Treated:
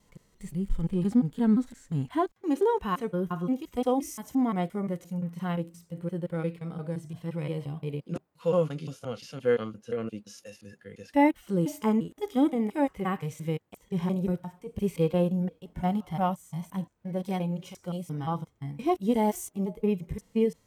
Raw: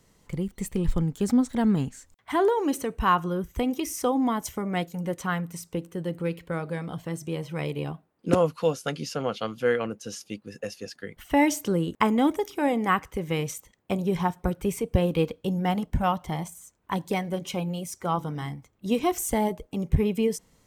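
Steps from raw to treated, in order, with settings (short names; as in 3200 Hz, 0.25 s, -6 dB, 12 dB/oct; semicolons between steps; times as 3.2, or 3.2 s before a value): slices in reverse order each 0.174 s, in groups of 2; harmonic-percussive split percussive -16 dB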